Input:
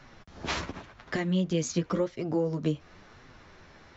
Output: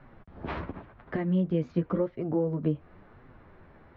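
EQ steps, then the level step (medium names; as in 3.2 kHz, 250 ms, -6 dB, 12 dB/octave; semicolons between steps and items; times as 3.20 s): low-pass 1.3 kHz 6 dB/octave; distance through air 350 m; +1.5 dB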